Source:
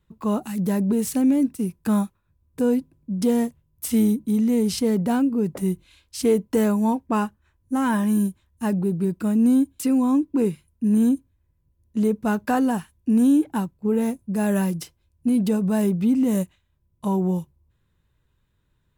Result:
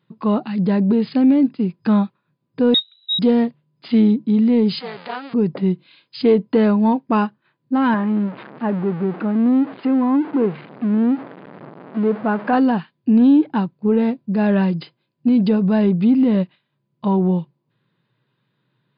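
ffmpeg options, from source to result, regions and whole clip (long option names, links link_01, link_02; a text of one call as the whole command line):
ffmpeg -i in.wav -filter_complex "[0:a]asettb=1/sr,asplit=3[link_01][link_02][link_03];[link_01]atrim=end=2.744[link_04];[link_02]atrim=start=2.74:end=3.19,asetpts=PTS-STARTPTS,afade=type=in:duration=0.004:curve=qsin,afade=type=out:start_time=0.446:duration=0.004:curve=qsin,equalizer=frequency=1500:width=0.83:gain=4,lowpass=frequency=3400:width_type=q:width=0.5098,lowpass=frequency=3400:width_type=q:width=0.6013,lowpass=frequency=3400:width_type=q:width=0.9,lowpass=frequency=3400:width_type=q:width=2.563,afreqshift=-4000[link_05];[link_03]atrim=start=3.186[link_06];[link_04][link_05]acrossfade=duration=0.004:curve1=hsin:curve2=qsin[link_07];[link_07][link_06]acrossfade=duration=0.004:curve1=qsin:curve2=hsin,asettb=1/sr,asplit=3[link_08][link_09][link_10];[link_08]atrim=end=4.804[link_11];[link_09]atrim=start=4.8:end=5.34,asetpts=PTS-STARTPTS,afade=type=in:duration=0.004:curve=qsin,afade=type=out:start_time=0.536:duration=0.004:curve=qsin,aeval=exprs='val(0)+0.5*0.0376*sgn(val(0))':channel_layout=same,highpass=810,tremolo=f=270:d=0.857[link_12];[link_10]atrim=start=5.336[link_13];[link_11][link_12]acrossfade=duration=0.004:curve1=hsin:curve2=qsin[link_14];[link_14][link_13]acrossfade=duration=0.004:curve1=qsin:curve2=hsin,asettb=1/sr,asplit=3[link_15][link_16][link_17];[link_15]atrim=end=7.944[link_18];[link_16]atrim=start=7.94:end=12.53,asetpts=PTS-STARTPTS,afade=type=in:duration=0.004:curve=qsin,afade=type=out:start_time=4.586:duration=0.004:curve=qsin,aeval=exprs='val(0)+0.5*0.0398*sgn(val(0))':channel_layout=same,lowpass=1600,equalizer=frequency=98:width_type=o:width=2.1:gain=-11.5[link_19];[link_17]atrim=start=12.526[link_20];[link_18][link_19]acrossfade=duration=0.004:curve1=hsin:curve2=qsin[link_21];[link_21][link_20]acrossfade=duration=0.004:curve1=qsin:curve2=hsin,afftfilt=real='re*between(b*sr/4096,110,5000)':imag='im*between(b*sr/4096,110,5000)':win_size=4096:overlap=0.75,acontrast=34" out.wav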